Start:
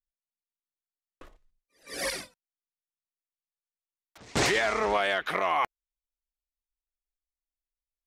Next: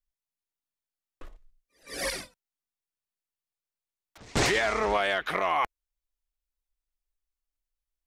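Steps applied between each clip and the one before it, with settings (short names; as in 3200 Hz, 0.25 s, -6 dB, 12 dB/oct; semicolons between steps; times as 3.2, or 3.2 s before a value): low shelf 62 Hz +11 dB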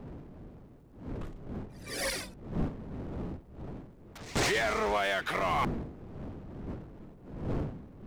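wind noise 260 Hz -39 dBFS; power-law curve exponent 0.7; gain -6 dB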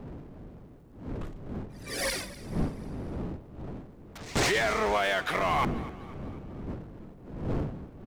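frequency-shifting echo 0.246 s, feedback 51%, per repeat +32 Hz, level -18 dB; gain +2.5 dB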